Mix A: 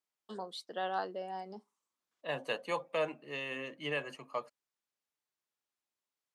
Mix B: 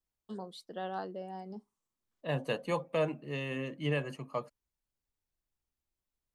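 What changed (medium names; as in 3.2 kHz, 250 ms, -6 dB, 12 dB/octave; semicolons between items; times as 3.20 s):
first voice -4.5 dB; master: remove frequency weighting A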